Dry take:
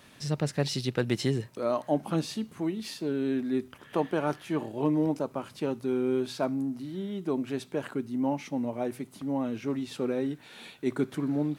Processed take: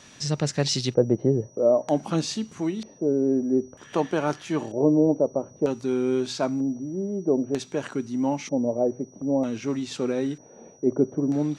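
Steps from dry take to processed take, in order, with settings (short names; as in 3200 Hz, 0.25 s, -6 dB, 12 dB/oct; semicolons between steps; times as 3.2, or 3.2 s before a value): LFO low-pass square 0.53 Hz 560–6600 Hz; whine 5800 Hz -58 dBFS; gain +3.5 dB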